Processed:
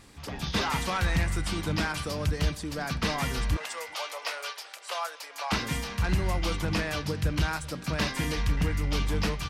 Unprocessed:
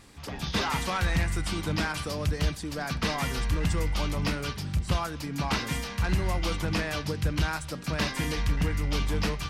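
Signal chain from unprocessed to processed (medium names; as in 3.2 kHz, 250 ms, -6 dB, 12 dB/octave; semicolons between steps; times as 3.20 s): 3.57–5.52 s: steep high-pass 520 Hz 36 dB/octave; speakerphone echo 380 ms, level -20 dB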